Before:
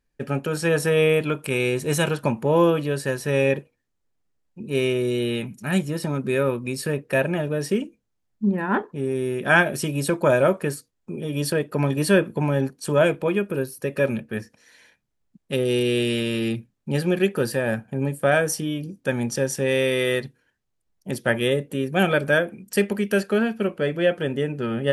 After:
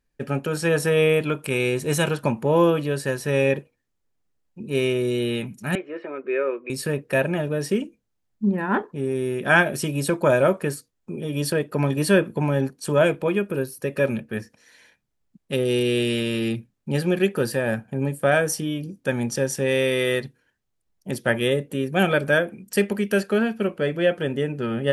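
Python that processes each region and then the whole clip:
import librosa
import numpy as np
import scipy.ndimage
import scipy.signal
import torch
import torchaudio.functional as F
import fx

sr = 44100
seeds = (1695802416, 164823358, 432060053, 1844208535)

y = fx.chain(x, sr, fx.cheby1_bandpass(low_hz=360.0, high_hz=2400.0, order=3),
    fx.peak_eq(hz=880.0, db=-10.0, octaves=0.39), at=(5.75, 6.7))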